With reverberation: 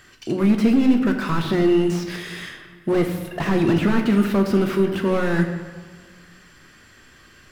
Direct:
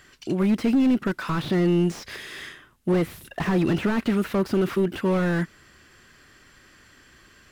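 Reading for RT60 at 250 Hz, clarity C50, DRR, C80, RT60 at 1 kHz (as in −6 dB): 1.7 s, 7.0 dB, 3.5 dB, 8.5 dB, 1.5 s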